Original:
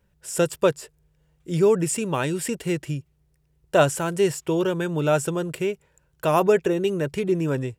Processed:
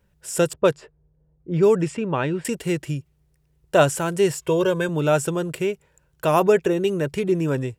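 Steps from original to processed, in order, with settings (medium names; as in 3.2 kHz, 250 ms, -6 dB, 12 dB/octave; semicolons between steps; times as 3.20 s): 0.53–2.45 s: level-controlled noise filter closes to 540 Hz, open at -14 dBFS; 4.40–4.89 s: comb 1.9 ms, depth 74%; trim +1.5 dB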